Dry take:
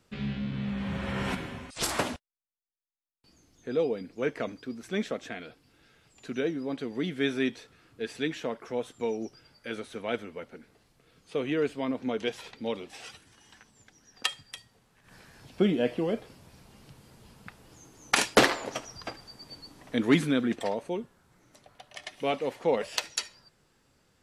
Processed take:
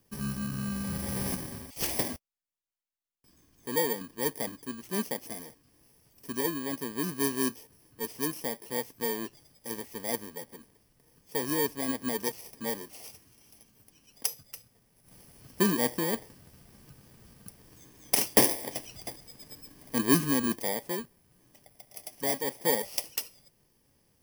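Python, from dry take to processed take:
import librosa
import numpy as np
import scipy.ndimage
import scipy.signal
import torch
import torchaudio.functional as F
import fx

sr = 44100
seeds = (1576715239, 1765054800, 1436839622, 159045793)

y = fx.bit_reversed(x, sr, seeds[0], block=32)
y = F.gain(torch.from_numpy(y), -1.0).numpy()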